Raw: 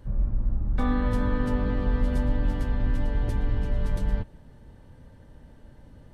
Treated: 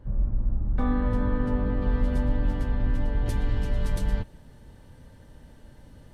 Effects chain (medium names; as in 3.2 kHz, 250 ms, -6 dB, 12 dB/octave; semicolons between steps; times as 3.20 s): treble shelf 2.7 kHz -11.5 dB, from 1.82 s -3 dB, from 3.26 s +8 dB